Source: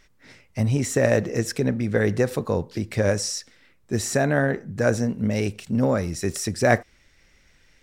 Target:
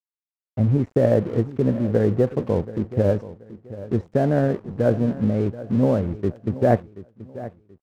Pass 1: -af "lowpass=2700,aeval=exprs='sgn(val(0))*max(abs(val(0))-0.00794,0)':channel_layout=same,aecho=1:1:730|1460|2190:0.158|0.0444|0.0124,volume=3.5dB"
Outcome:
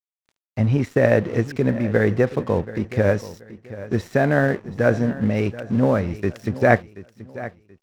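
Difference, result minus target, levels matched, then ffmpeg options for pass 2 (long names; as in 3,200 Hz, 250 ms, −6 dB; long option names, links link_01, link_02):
2,000 Hz band +12.5 dB
-af "lowpass=720,aeval=exprs='sgn(val(0))*max(abs(val(0))-0.00794,0)':channel_layout=same,aecho=1:1:730|1460|2190:0.158|0.0444|0.0124,volume=3.5dB"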